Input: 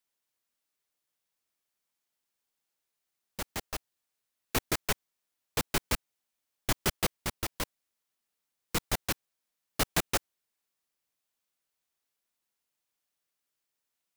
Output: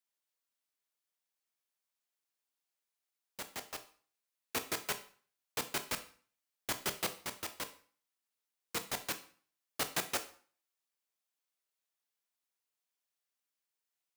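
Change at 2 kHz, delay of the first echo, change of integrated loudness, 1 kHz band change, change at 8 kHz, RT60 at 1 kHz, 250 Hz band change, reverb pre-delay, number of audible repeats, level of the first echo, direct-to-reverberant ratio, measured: −5.0 dB, no echo audible, −5.5 dB, −5.5 dB, −5.0 dB, 0.50 s, −10.0 dB, 12 ms, no echo audible, no echo audible, 8.5 dB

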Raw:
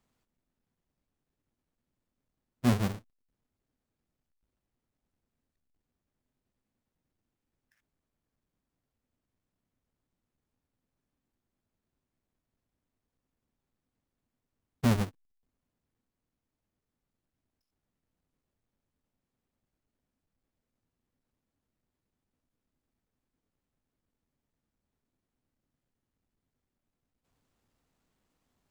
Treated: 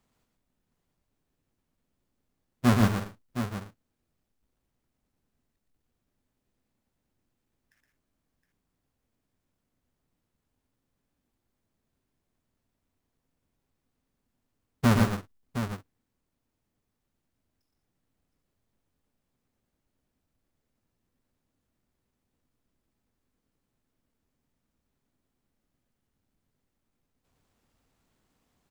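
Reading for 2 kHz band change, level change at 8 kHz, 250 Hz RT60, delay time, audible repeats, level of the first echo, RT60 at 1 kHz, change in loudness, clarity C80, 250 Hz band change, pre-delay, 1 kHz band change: +8.0 dB, +5.0 dB, no reverb audible, 118 ms, 3, −4.5 dB, no reverb audible, +2.5 dB, no reverb audible, +5.0 dB, no reverb audible, +8.0 dB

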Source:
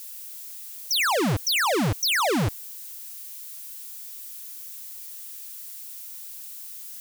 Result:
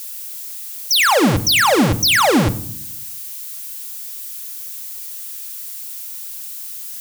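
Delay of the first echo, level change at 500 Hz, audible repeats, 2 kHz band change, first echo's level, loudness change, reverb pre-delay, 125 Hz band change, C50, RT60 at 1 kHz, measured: no echo audible, +9.0 dB, no echo audible, +9.0 dB, no echo audible, +9.0 dB, 4 ms, +7.0 dB, 17.5 dB, 0.55 s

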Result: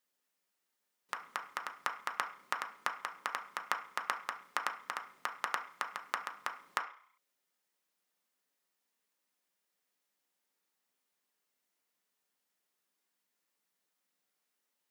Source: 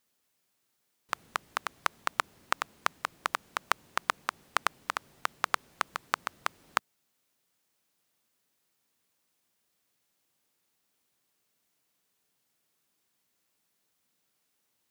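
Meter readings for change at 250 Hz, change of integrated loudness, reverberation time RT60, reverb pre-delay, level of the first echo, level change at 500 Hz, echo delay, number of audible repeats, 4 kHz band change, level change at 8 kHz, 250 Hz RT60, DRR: −9.0 dB, −5.5 dB, 0.45 s, 3 ms, no echo audible, −6.5 dB, no echo audible, no echo audible, −7.0 dB, −7.5 dB, 0.35 s, 2.0 dB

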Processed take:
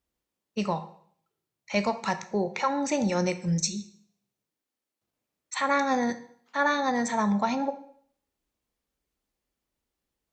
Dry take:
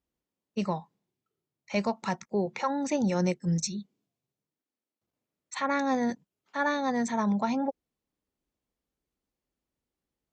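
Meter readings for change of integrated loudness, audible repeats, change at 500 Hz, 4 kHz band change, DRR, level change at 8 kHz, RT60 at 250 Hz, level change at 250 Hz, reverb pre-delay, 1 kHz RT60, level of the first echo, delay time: +2.0 dB, no echo audible, +2.0 dB, +5.0 dB, 9.5 dB, +5.0 dB, 0.60 s, +0.5 dB, 6 ms, 0.60 s, no echo audible, no echo audible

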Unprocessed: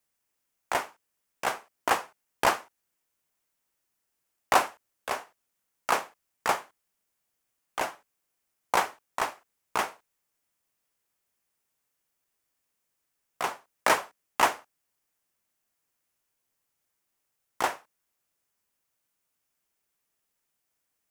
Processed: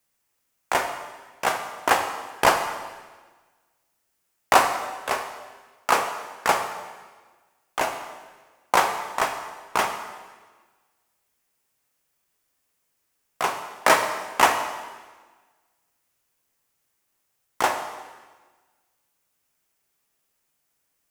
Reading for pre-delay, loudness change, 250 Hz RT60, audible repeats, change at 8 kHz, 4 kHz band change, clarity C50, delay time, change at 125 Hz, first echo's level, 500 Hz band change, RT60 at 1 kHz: 5 ms, +5.5 dB, 1.5 s, no echo audible, +6.0 dB, +6.0 dB, 7.5 dB, no echo audible, +6.5 dB, no echo audible, +6.5 dB, 1.4 s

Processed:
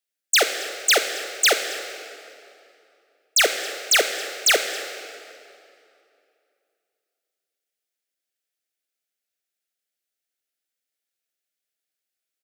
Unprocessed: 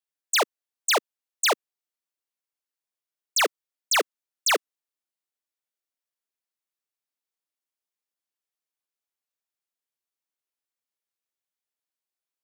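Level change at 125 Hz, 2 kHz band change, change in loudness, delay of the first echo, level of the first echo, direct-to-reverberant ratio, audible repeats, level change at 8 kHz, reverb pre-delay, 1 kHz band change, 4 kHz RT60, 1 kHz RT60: can't be measured, +6.0 dB, +4.5 dB, 273 ms, −21.0 dB, 6.5 dB, 1, +6.0 dB, 19 ms, −1.0 dB, 2.0 s, 2.6 s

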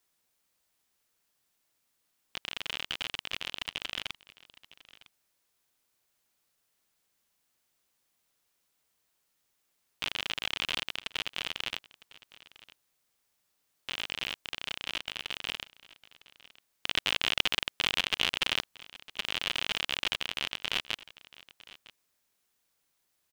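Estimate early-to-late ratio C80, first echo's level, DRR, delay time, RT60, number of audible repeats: no reverb audible, −20.0 dB, no reverb audible, 956 ms, no reverb audible, 1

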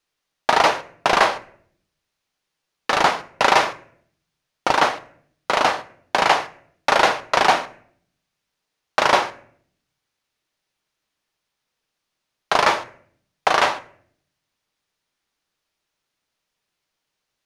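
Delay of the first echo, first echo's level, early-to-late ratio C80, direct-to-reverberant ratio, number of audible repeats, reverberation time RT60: no echo audible, no echo audible, 21.0 dB, 10.5 dB, no echo audible, 0.60 s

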